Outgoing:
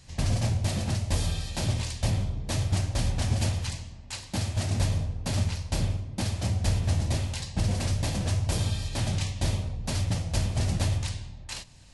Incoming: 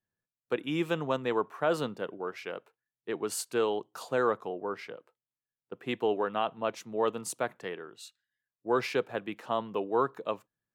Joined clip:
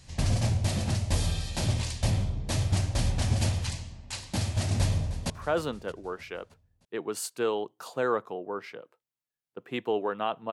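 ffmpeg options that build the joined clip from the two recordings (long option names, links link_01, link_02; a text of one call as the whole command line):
ffmpeg -i cue0.wav -i cue1.wav -filter_complex "[0:a]apad=whole_dur=10.52,atrim=end=10.52,atrim=end=5.302[link_01];[1:a]atrim=start=1.448:end=6.67[link_02];[link_01][link_02]acrossfade=duration=0.004:curve1=hsin:curve2=hsin,asplit=2[link_03][link_04];[link_04]afade=type=in:start_time=4.72:duration=0.01,afade=type=out:start_time=5.3:duration=0.01,aecho=0:1:310|620|930|1240|1550:0.177828|0.0978054|0.053793|0.0295861|0.0162724[link_05];[link_03][link_05]amix=inputs=2:normalize=0" out.wav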